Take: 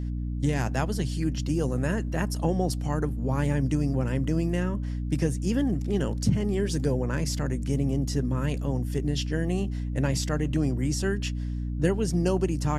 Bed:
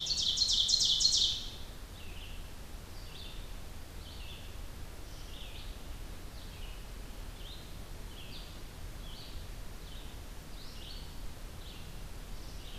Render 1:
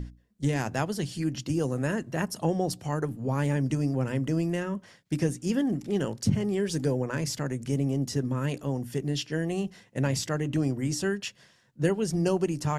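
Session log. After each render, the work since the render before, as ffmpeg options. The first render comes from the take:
-af "bandreject=f=60:t=h:w=6,bandreject=f=120:t=h:w=6,bandreject=f=180:t=h:w=6,bandreject=f=240:t=h:w=6,bandreject=f=300:t=h:w=6"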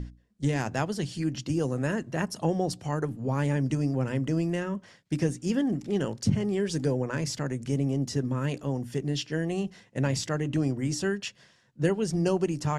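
-af "lowpass=9k"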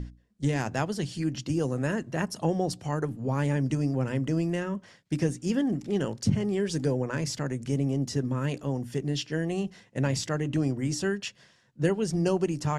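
-af anull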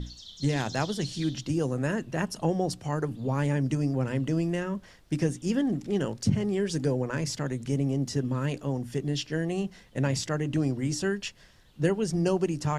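-filter_complex "[1:a]volume=-15dB[a];[0:a][a]amix=inputs=2:normalize=0"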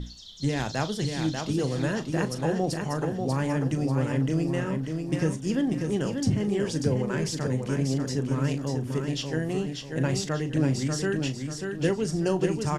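-filter_complex "[0:a]asplit=2[a][b];[b]adelay=38,volume=-12dB[c];[a][c]amix=inputs=2:normalize=0,aecho=1:1:590|1180|1770|2360|2950:0.562|0.208|0.077|0.0285|0.0105"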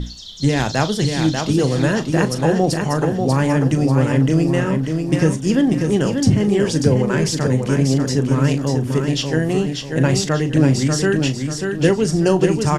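-af "volume=10dB,alimiter=limit=-2dB:level=0:latency=1"

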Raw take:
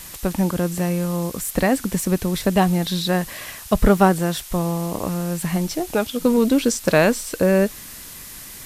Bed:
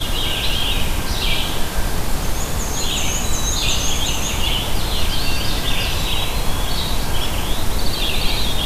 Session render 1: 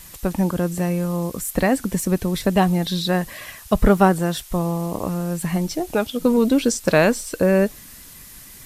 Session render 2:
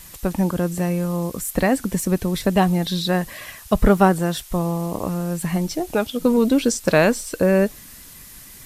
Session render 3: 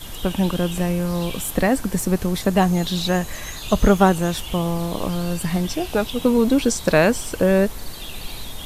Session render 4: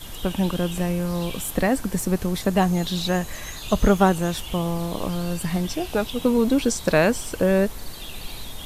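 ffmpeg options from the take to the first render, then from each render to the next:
-af "afftdn=nr=6:nf=-38"
-af anull
-filter_complex "[1:a]volume=-14.5dB[a];[0:a][a]amix=inputs=2:normalize=0"
-af "volume=-2.5dB"

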